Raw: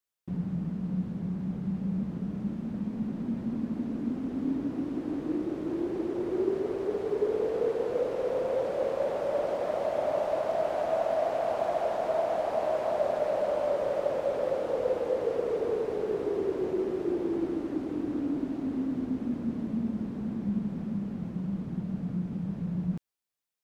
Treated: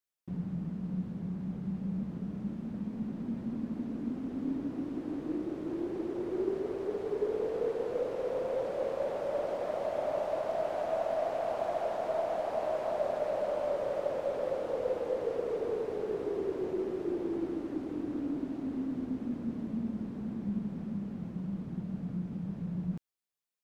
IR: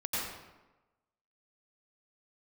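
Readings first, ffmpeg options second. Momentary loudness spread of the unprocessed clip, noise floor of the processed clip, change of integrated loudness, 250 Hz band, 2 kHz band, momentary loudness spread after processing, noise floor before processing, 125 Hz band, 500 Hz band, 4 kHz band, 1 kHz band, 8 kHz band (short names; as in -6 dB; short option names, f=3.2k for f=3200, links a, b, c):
5 LU, -43 dBFS, -4.0 dB, -4.0 dB, -4.0 dB, 5 LU, -39 dBFS, -4.0 dB, -4.0 dB, -4.0 dB, -4.0 dB, n/a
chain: -af "aeval=exprs='0.168*(cos(1*acos(clip(val(0)/0.168,-1,1)))-cos(1*PI/2))+0.0015*(cos(6*acos(clip(val(0)/0.168,-1,1)))-cos(6*PI/2))':c=same,volume=-4dB"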